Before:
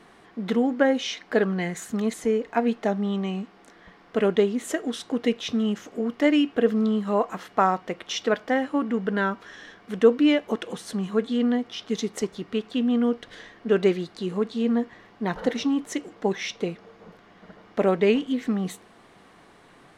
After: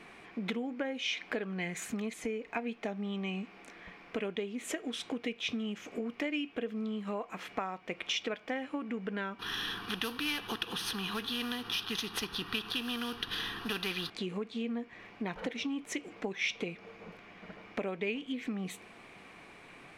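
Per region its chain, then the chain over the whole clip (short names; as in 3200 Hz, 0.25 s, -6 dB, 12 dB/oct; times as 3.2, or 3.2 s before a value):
9.39–14.1 CVSD 64 kbps + fixed phaser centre 2200 Hz, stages 6 + spectral compressor 2:1
whole clip: dynamic EQ 3300 Hz, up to +6 dB, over -54 dBFS, Q 7.3; compressor 6:1, threshold -32 dBFS; bell 2400 Hz +14 dB 0.34 oct; gain -2 dB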